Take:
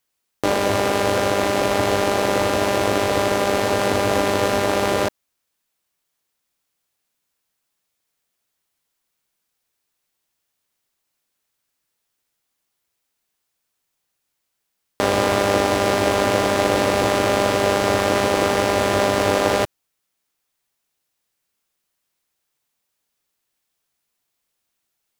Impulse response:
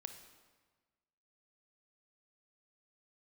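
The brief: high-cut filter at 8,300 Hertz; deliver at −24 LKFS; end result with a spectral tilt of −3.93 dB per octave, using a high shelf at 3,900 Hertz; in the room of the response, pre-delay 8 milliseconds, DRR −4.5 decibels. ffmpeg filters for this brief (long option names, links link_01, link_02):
-filter_complex "[0:a]lowpass=8300,highshelf=frequency=3900:gain=3.5,asplit=2[link_01][link_02];[1:a]atrim=start_sample=2205,adelay=8[link_03];[link_02][link_03]afir=irnorm=-1:irlink=0,volume=8.5dB[link_04];[link_01][link_04]amix=inputs=2:normalize=0,volume=-11.5dB"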